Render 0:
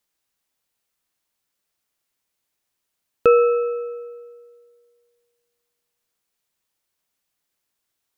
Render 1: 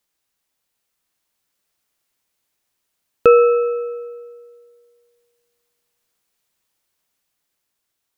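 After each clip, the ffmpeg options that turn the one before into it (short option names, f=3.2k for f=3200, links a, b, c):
-af "dynaudnorm=f=240:g=11:m=3dB,volume=2dB"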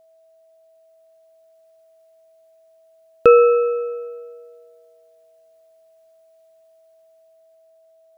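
-af "aeval=exprs='val(0)+0.00251*sin(2*PI*650*n/s)':c=same"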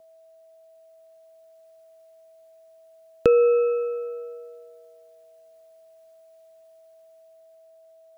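-filter_complex "[0:a]acrossover=split=510|1700[a][b][c];[a]acompressor=threshold=-17dB:ratio=4[d];[b]acompressor=threshold=-40dB:ratio=4[e];[c]acompressor=threshold=-39dB:ratio=4[f];[d][e][f]amix=inputs=3:normalize=0,volume=1.5dB"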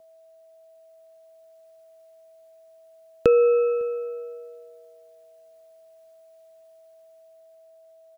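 -filter_complex "[0:a]asplit=2[a][b];[b]adelay=553.9,volume=-29dB,highshelf=f=4k:g=-12.5[c];[a][c]amix=inputs=2:normalize=0"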